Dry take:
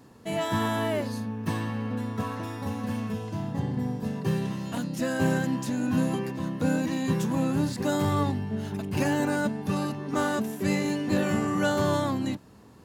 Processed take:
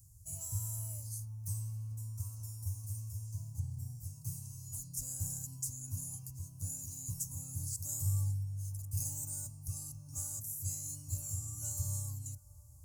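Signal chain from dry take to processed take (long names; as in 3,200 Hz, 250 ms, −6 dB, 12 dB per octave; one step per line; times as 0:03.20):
inverse Chebyshev band-stop filter 190–3,800 Hz, stop band 40 dB
on a send: delay with a band-pass on its return 687 ms, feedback 80%, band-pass 730 Hz, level −19 dB
on the sum: dynamic equaliser 120 Hz, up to −6 dB, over −52 dBFS, Q 0.82
level +6.5 dB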